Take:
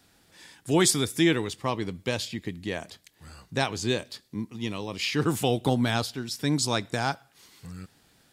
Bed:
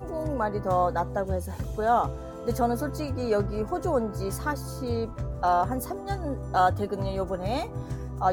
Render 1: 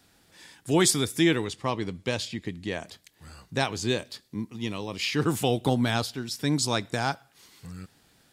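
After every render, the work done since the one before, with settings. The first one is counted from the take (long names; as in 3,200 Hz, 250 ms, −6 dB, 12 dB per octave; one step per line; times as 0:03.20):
0:01.45–0:02.86: low-pass filter 10,000 Hz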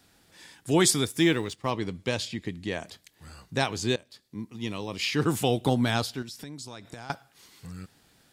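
0:01.05–0:01.71: mu-law and A-law mismatch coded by A
0:03.96–0:05.06: fade in equal-power, from −19 dB
0:06.22–0:07.10: downward compressor 10 to 1, threshold −37 dBFS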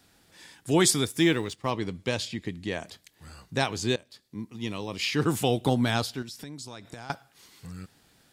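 no processing that can be heard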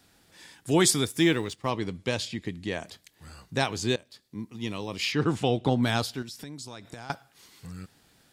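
0:01.69–0:02.83: linear-phase brick-wall low-pass 13,000 Hz
0:05.12–0:05.83: high-frequency loss of the air 100 metres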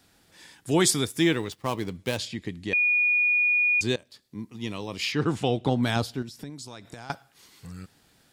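0:01.52–0:02.18: gap after every zero crossing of 0.069 ms
0:02.73–0:03.81: beep over 2,450 Hz −19 dBFS
0:05.96–0:06.50: tilt shelving filter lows +4 dB, about 880 Hz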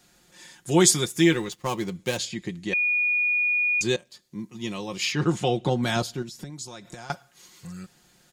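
parametric band 6,700 Hz +8 dB 0.25 octaves
comb filter 5.6 ms, depth 64%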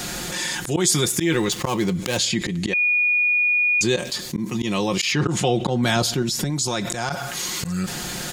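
volume swells 155 ms
envelope flattener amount 70%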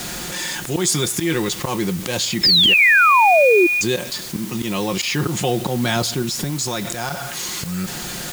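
bit-depth reduction 6 bits, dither triangular
0:02.43–0:03.67: sound drawn into the spectrogram fall 330–5,300 Hz −13 dBFS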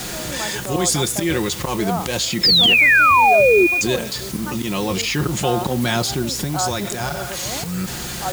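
mix in bed −3 dB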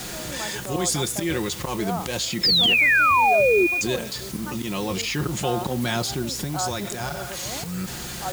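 level −5 dB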